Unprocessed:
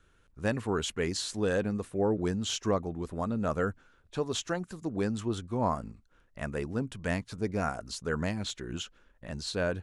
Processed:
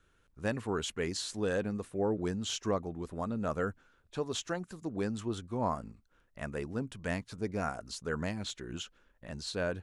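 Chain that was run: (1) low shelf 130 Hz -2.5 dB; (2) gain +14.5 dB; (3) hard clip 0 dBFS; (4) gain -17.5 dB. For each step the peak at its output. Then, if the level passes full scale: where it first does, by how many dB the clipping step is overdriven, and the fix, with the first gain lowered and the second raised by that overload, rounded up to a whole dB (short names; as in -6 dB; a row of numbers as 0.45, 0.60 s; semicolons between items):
-16.5, -2.0, -2.0, -19.5 dBFS; no overload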